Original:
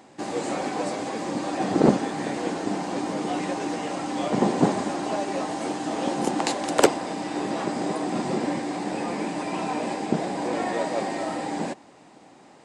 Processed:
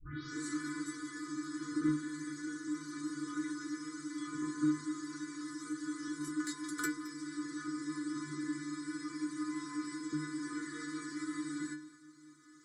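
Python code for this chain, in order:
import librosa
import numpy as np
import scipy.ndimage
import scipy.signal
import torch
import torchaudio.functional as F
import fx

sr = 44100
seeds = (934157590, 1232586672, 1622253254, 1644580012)

p1 = fx.tape_start_head(x, sr, length_s=0.4)
p2 = 10.0 ** (-15.0 / 20.0) * np.tanh(p1 / 10.0 ** (-15.0 / 20.0))
p3 = p1 + (p2 * librosa.db_to_amplitude(-5.0))
p4 = scipy.signal.sosfilt(scipy.signal.ellip(3, 1.0, 60, [320.0, 1300.0], 'bandstop', fs=sr, output='sos'), p3)
p5 = fx.stiff_resonator(p4, sr, f0_hz=150.0, decay_s=0.44, stiffness=0.008)
p6 = p5 + fx.echo_single(p5, sr, ms=217, db=-18.5, dry=0)
p7 = fx.rider(p6, sr, range_db=10, speed_s=2.0)
p8 = fx.low_shelf(p7, sr, hz=92.0, db=-9.5)
p9 = fx.fixed_phaser(p8, sr, hz=730.0, stages=6)
p10 = fx.dynamic_eq(p9, sr, hz=6100.0, q=0.71, threshold_db=-54.0, ratio=4.0, max_db=-4)
y = p10 * librosa.db_to_amplitude(3.0)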